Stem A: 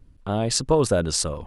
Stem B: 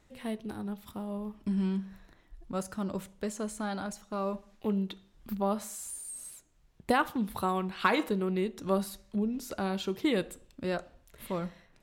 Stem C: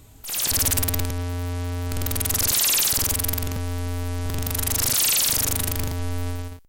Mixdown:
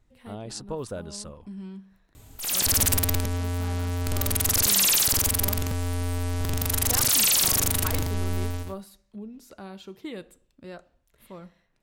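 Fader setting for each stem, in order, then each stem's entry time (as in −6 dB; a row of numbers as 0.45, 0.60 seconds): −14.0, −9.0, −0.5 decibels; 0.00, 0.00, 2.15 seconds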